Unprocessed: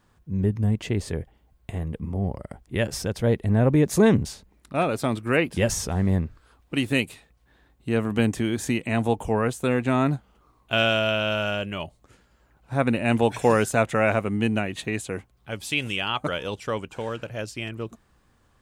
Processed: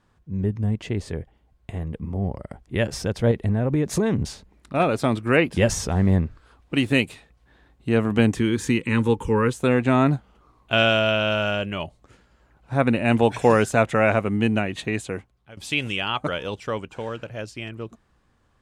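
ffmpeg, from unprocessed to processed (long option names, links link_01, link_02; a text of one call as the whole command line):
ffmpeg -i in.wav -filter_complex "[0:a]asettb=1/sr,asplit=3[link_01][link_02][link_03];[link_01]atrim=end=3.314[link_04];[link_02]atrim=start=3.31:end=4.8,asetpts=PTS-STARTPTS,afade=type=in:duration=0.004:curve=qsin,afade=type=out:start_time=1.486:duration=0.004:curve=qsin,acompressor=threshold=-20dB:ratio=6:attack=3.2:release=140:knee=1:detection=peak[link_05];[link_03]atrim=start=4.796[link_06];[link_04][link_05]acrossfade=duration=0.004:curve1=hsin:curve2=qsin[link_07];[link_07][link_06]acrossfade=duration=0.004:curve1=qsin:curve2=hsin,asettb=1/sr,asplit=3[link_08][link_09][link_10];[link_08]atrim=end=8.364[link_11];[link_09]atrim=start=8.36:end=9.54,asetpts=PTS-STARTPTS,afade=type=in:duration=0.004:curve=qsin,afade=type=out:start_time=1.176:duration=0.004:curve=qsin,asuperstop=centerf=680:order=8:qfactor=2.2[link_12];[link_10]atrim=start=9.536[link_13];[link_11][link_12]acrossfade=duration=0.004:curve1=hsin:curve2=qsin[link_14];[link_14][link_13]acrossfade=duration=0.004:curve1=qsin:curve2=hsin,asplit=2[link_15][link_16];[link_15]atrim=end=15.57,asetpts=PTS-STARTPTS,afade=type=out:start_time=15.06:duration=0.51:silence=0.112202[link_17];[link_16]atrim=start=15.57,asetpts=PTS-STARTPTS,afade=type=in:duration=0.004:curve=hsin:silence=0.112202[link_18];[link_17][link_18]concat=n=2:v=0:a=1,aemphasis=mode=reproduction:type=50fm,dynaudnorm=framelen=310:gausssize=17:maxgain=5.5dB,highshelf=frequency=4600:gain=6.5,volume=-1.5dB" out.wav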